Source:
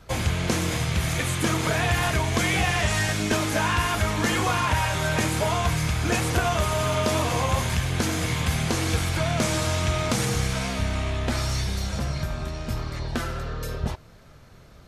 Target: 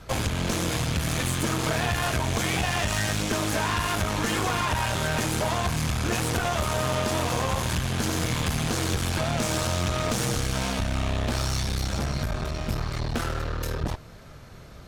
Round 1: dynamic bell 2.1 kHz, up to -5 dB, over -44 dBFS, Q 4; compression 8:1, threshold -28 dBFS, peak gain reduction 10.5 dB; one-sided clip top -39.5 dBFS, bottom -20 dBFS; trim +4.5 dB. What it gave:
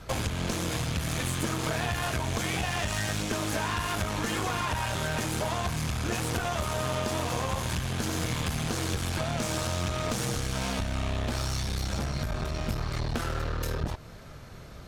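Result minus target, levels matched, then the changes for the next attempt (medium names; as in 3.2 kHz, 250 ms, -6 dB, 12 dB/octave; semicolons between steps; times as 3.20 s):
compression: peak gain reduction +5 dB
change: compression 8:1, threshold -22 dBFS, peak gain reduction 5.5 dB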